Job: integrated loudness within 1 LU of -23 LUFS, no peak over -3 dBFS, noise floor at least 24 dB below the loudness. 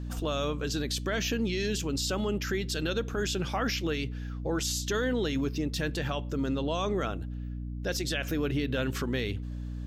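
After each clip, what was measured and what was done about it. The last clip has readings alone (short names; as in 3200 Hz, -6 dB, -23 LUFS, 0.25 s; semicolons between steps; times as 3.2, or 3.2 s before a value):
hum 60 Hz; harmonics up to 300 Hz; hum level -34 dBFS; loudness -31.0 LUFS; peak -18.0 dBFS; loudness target -23.0 LUFS
-> de-hum 60 Hz, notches 5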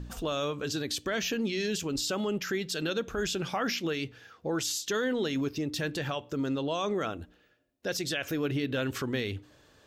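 hum none; loudness -31.5 LUFS; peak -18.5 dBFS; loudness target -23.0 LUFS
-> gain +8.5 dB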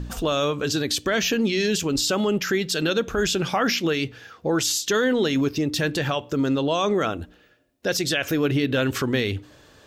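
loudness -23.0 LUFS; peak -10.0 dBFS; noise floor -55 dBFS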